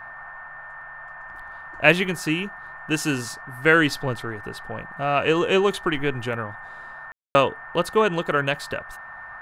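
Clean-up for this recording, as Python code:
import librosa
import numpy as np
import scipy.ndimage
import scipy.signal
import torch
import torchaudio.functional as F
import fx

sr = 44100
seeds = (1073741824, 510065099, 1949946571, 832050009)

y = fx.notch(x, sr, hz=1800.0, q=30.0)
y = fx.fix_ambience(y, sr, seeds[0], print_start_s=0.48, print_end_s=0.98, start_s=7.12, end_s=7.35)
y = fx.noise_reduce(y, sr, print_start_s=0.48, print_end_s=0.98, reduce_db=28.0)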